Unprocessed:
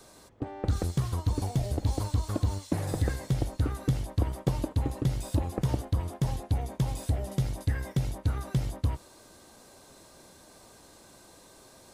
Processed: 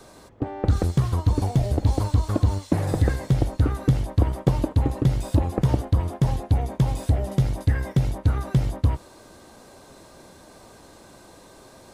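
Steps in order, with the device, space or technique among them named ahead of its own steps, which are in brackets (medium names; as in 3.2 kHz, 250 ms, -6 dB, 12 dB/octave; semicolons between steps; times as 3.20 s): behind a face mask (treble shelf 3.4 kHz -7.5 dB); trim +7.5 dB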